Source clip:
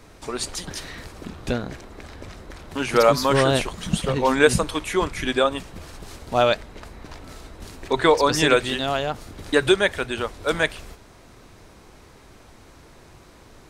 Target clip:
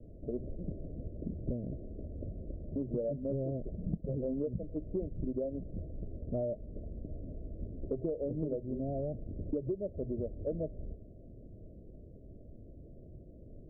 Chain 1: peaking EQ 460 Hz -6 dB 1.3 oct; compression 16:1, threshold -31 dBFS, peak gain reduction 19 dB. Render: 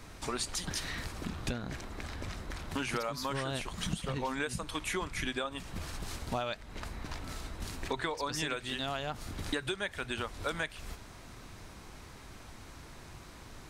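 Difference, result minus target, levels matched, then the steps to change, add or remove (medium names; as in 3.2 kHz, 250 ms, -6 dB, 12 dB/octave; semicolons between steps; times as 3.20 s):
500 Hz band -4.5 dB
add first: steep low-pass 640 Hz 96 dB/octave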